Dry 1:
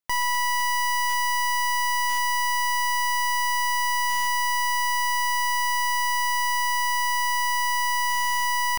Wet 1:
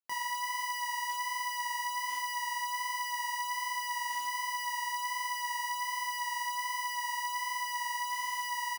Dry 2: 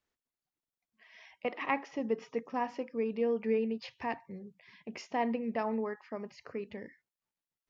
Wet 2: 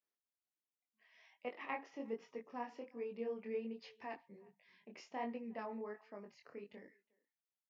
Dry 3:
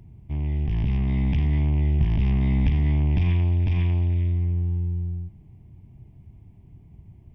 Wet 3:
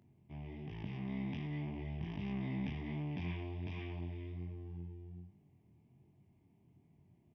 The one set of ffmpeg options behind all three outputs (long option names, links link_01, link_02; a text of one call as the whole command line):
ffmpeg -i in.wav -filter_complex "[0:a]asplit=2[link_01][link_02];[link_02]adelay=360,highpass=300,lowpass=3400,asoftclip=type=hard:threshold=-21dB,volume=-26dB[link_03];[link_01][link_03]amix=inputs=2:normalize=0,flanger=delay=20:depth=5.8:speed=1.3,highpass=190,volume=-7.5dB" out.wav